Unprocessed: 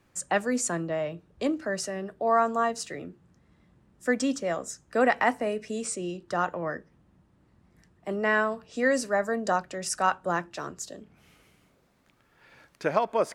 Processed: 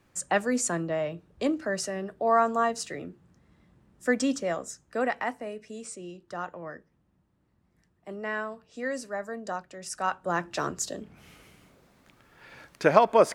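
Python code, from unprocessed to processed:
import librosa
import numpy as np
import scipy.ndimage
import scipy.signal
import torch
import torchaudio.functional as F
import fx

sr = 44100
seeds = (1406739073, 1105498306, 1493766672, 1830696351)

y = fx.gain(x, sr, db=fx.line((4.4, 0.5), (5.36, -8.0), (9.78, -8.0), (10.34, -0.5), (10.56, 6.0)))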